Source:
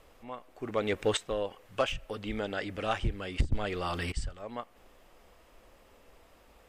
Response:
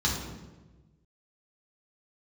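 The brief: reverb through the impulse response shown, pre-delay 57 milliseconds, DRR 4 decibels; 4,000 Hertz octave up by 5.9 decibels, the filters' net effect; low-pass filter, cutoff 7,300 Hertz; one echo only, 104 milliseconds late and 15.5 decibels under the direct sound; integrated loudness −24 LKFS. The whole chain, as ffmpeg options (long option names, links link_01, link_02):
-filter_complex "[0:a]lowpass=7300,equalizer=frequency=4000:width_type=o:gain=8,aecho=1:1:104:0.168,asplit=2[link_01][link_02];[1:a]atrim=start_sample=2205,adelay=57[link_03];[link_02][link_03]afir=irnorm=-1:irlink=0,volume=-14dB[link_04];[link_01][link_04]amix=inputs=2:normalize=0,volume=5dB"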